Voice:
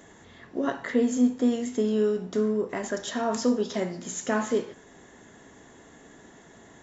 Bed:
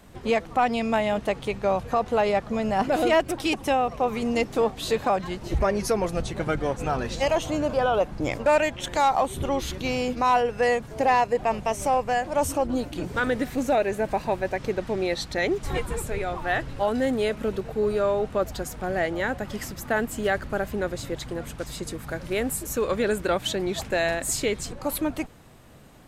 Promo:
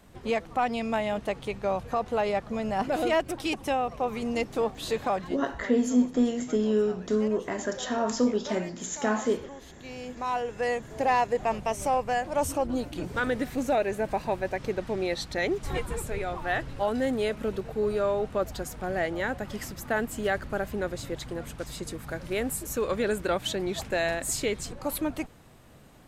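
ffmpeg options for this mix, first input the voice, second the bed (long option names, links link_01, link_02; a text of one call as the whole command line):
ffmpeg -i stem1.wav -i stem2.wav -filter_complex "[0:a]adelay=4750,volume=-0.5dB[link_01];[1:a]volume=11.5dB,afade=type=out:start_time=5.19:duration=0.24:silence=0.188365,afade=type=in:start_time=9.72:duration=1.48:silence=0.158489[link_02];[link_01][link_02]amix=inputs=2:normalize=0" out.wav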